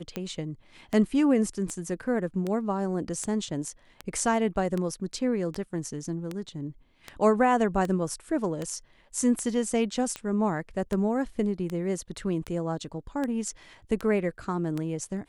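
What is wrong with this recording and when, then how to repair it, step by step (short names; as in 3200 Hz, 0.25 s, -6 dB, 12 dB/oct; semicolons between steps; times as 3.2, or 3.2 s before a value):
tick 78 rpm -18 dBFS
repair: de-click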